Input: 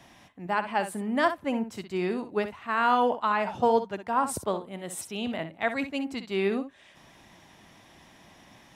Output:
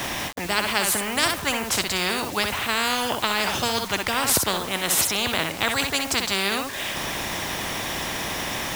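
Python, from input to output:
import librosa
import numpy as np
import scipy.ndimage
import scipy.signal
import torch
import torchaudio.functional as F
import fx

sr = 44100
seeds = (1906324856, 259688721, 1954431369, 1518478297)

y = fx.quant_dither(x, sr, seeds[0], bits=10, dither='none')
y = fx.spectral_comp(y, sr, ratio=4.0)
y = F.gain(torch.from_numpy(y), 6.0).numpy()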